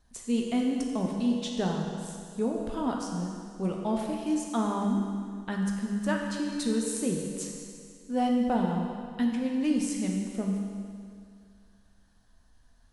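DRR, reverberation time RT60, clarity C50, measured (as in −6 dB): 0.0 dB, 2.2 s, 2.0 dB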